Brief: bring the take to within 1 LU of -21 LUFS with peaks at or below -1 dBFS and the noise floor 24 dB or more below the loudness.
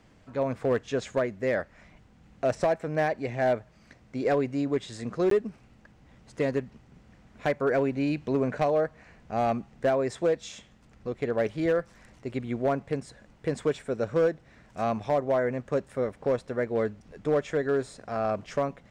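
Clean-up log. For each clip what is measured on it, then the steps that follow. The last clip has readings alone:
clipped samples 0.7%; clipping level -18.0 dBFS; dropouts 1; longest dropout 13 ms; loudness -29.0 LUFS; peak level -18.0 dBFS; loudness target -21.0 LUFS
-> clip repair -18 dBFS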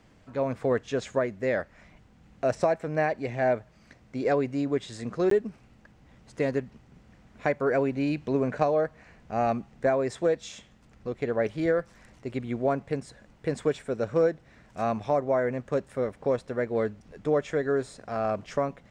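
clipped samples 0.0%; dropouts 1; longest dropout 13 ms
-> interpolate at 5.30 s, 13 ms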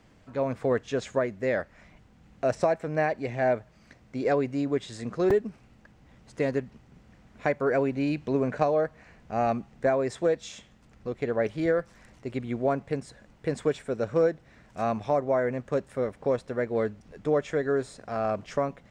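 dropouts 0; loudness -28.5 LUFS; peak level -9.5 dBFS; loudness target -21.0 LUFS
-> trim +7.5 dB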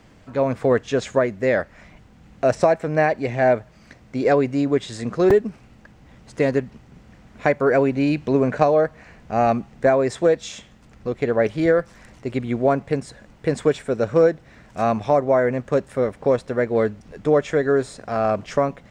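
loudness -21.0 LUFS; peak level -2.0 dBFS; noise floor -50 dBFS

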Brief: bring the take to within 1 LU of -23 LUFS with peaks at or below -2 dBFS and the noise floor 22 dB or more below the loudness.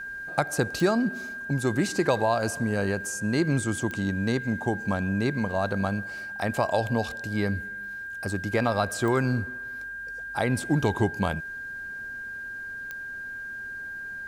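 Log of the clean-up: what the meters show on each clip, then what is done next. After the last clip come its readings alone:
clicks found 4; steady tone 1.6 kHz; tone level -34 dBFS; loudness -28.0 LUFS; peak level -8.5 dBFS; loudness target -23.0 LUFS
-> de-click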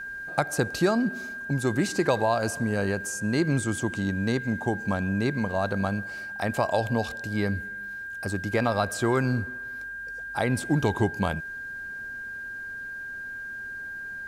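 clicks found 0; steady tone 1.6 kHz; tone level -34 dBFS
-> band-stop 1.6 kHz, Q 30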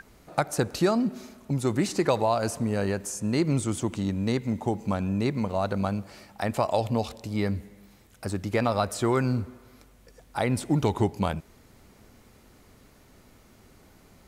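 steady tone not found; loudness -27.5 LUFS; peak level -9.0 dBFS; loudness target -23.0 LUFS
-> trim +4.5 dB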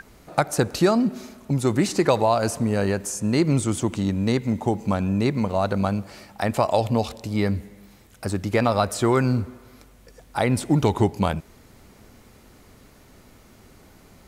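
loudness -23.0 LUFS; peak level -4.5 dBFS; noise floor -52 dBFS

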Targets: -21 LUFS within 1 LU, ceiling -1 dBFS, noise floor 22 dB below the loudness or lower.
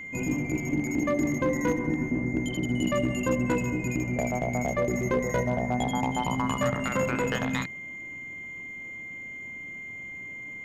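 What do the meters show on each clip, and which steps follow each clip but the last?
clipped samples 0.2%; clipping level -17.5 dBFS; steady tone 2.1 kHz; tone level -37 dBFS; loudness -29.0 LUFS; peak level -17.5 dBFS; loudness target -21.0 LUFS
-> clip repair -17.5 dBFS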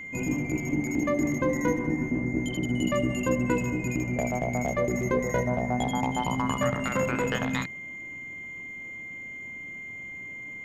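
clipped samples 0.0%; steady tone 2.1 kHz; tone level -37 dBFS
-> band-stop 2.1 kHz, Q 30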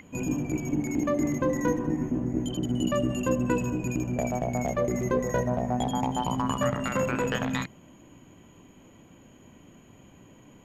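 steady tone not found; loudness -28.0 LUFS; peak level -12.0 dBFS; loudness target -21.0 LUFS
-> trim +7 dB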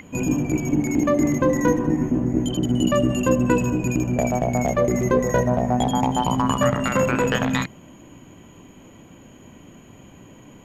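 loudness -21.0 LUFS; peak level -5.0 dBFS; noise floor -47 dBFS

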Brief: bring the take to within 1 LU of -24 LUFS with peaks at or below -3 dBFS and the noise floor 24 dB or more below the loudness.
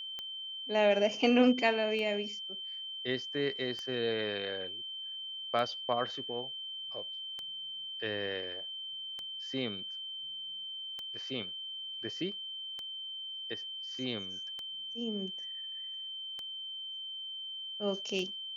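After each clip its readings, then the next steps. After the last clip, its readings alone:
clicks found 11; steady tone 3.1 kHz; tone level -39 dBFS; loudness -34.5 LUFS; peak level -12.5 dBFS; loudness target -24.0 LUFS
-> de-click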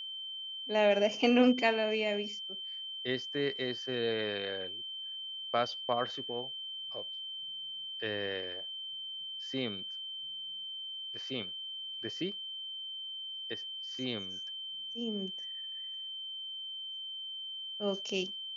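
clicks found 0; steady tone 3.1 kHz; tone level -39 dBFS
-> band-stop 3.1 kHz, Q 30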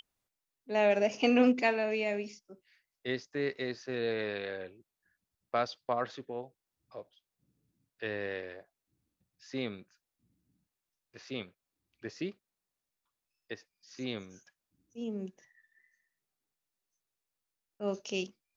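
steady tone not found; loudness -33.5 LUFS; peak level -13.0 dBFS; loudness target -24.0 LUFS
-> trim +9.5 dB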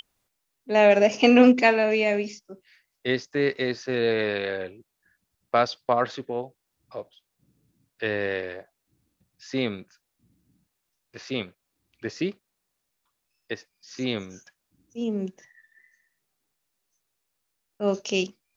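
loudness -24.0 LUFS; peak level -3.5 dBFS; noise floor -79 dBFS

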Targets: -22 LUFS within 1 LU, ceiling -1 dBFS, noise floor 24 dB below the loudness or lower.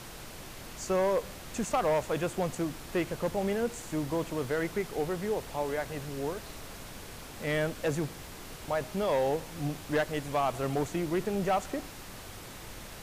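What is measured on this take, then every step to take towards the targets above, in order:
clipped samples 1.0%; clipping level -22.0 dBFS; noise floor -45 dBFS; noise floor target -56 dBFS; loudness -32.0 LUFS; peak level -22.0 dBFS; loudness target -22.0 LUFS
-> clip repair -22 dBFS; noise print and reduce 11 dB; trim +10 dB

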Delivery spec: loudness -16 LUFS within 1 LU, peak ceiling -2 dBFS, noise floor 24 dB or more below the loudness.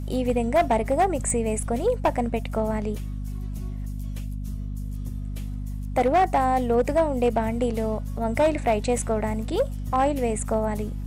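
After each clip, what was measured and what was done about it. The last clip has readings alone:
clipped samples 0.9%; clipping level -14.5 dBFS; hum 50 Hz; highest harmonic 250 Hz; hum level -28 dBFS; loudness -25.5 LUFS; peak level -14.5 dBFS; loudness target -16.0 LUFS
-> clip repair -14.5 dBFS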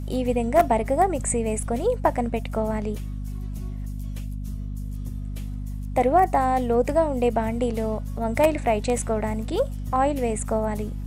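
clipped samples 0.0%; hum 50 Hz; highest harmonic 250 Hz; hum level -28 dBFS
-> hum notches 50/100/150/200/250 Hz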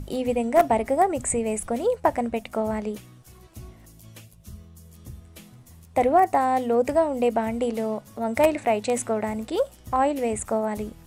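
hum not found; loudness -24.0 LUFS; peak level -5.5 dBFS; loudness target -16.0 LUFS
-> trim +8 dB; peak limiter -2 dBFS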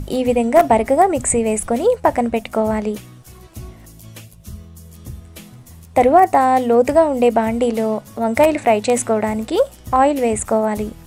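loudness -16.5 LUFS; peak level -2.0 dBFS; noise floor -42 dBFS

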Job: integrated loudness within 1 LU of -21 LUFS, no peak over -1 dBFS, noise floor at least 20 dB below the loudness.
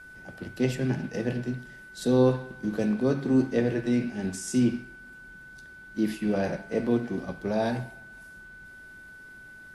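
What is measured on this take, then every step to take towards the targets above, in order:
steady tone 1.5 kHz; tone level -45 dBFS; loudness -27.5 LUFS; peak level -11.0 dBFS; loudness target -21.0 LUFS
-> band-stop 1.5 kHz, Q 30; trim +6.5 dB

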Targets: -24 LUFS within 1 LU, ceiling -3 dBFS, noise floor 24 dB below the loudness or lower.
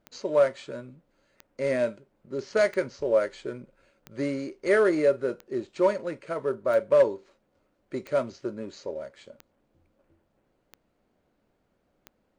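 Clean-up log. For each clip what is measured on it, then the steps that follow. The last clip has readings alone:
clicks found 10; loudness -27.0 LUFS; peak level -12.0 dBFS; loudness target -24.0 LUFS
-> de-click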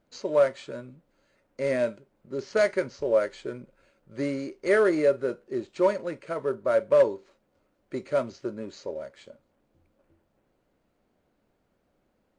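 clicks found 0; loudness -27.0 LUFS; peak level -12.0 dBFS; loudness target -24.0 LUFS
-> trim +3 dB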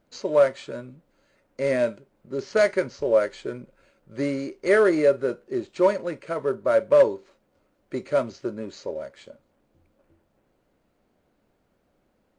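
loudness -24.0 LUFS; peak level -9.0 dBFS; noise floor -70 dBFS

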